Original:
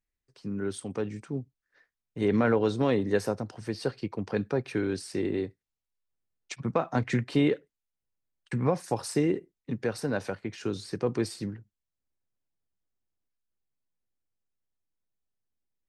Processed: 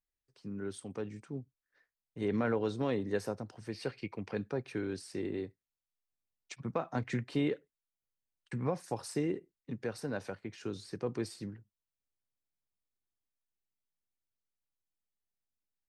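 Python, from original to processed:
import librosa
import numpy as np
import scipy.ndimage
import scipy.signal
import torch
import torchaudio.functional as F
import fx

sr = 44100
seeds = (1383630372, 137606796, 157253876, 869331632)

y = fx.peak_eq(x, sr, hz=2300.0, db=12.0, octaves=0.6, at=(3.72, 4.34))
y = F.gain(torch.from_numpy(y), -7.5).numpy()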